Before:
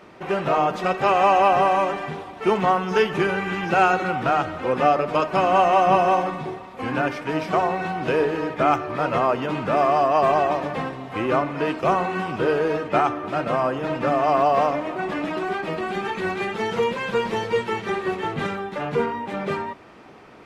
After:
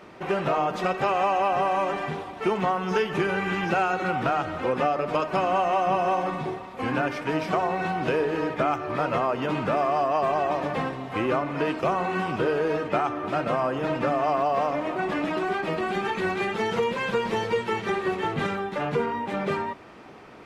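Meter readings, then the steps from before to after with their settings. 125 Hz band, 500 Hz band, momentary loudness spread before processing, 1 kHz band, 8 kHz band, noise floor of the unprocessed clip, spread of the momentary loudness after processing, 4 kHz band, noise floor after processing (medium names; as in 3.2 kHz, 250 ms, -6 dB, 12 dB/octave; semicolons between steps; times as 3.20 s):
-2.0 dB, -3.5 dB, 9 LU, -4.5 dB, no reading, -41 dBFS, 5 LU, -2.5 dB, -41 dBFS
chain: compression 4:1, threshold -21 dBFS, peak gain reduction 8 dB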